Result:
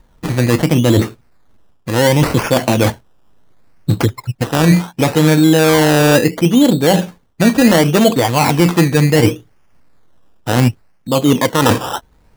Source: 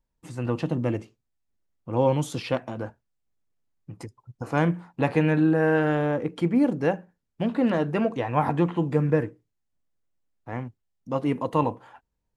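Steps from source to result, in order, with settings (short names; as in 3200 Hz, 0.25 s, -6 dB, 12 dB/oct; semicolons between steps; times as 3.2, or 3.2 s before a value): reverse; compressor 10:1, threshold -35 dBFS, peak gain reduction 19 dB; reverse; decimation with a swept rate 16×, swing 60% 0.7 Hz; maximiser +29 dB; gain -1 dB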